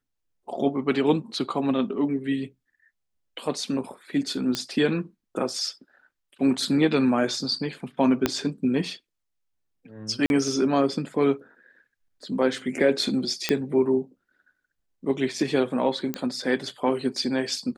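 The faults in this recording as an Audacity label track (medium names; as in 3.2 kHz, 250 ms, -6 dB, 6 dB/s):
4.550000	4.550000	pop -11 dBFS
8.260000	8.260000	pop -6 dBFS
10.260000	10.300000	dropout 41 ms
13.490000	13.490000	pop -7 dBFS
16.140000	16.140000	pop -12 dBFS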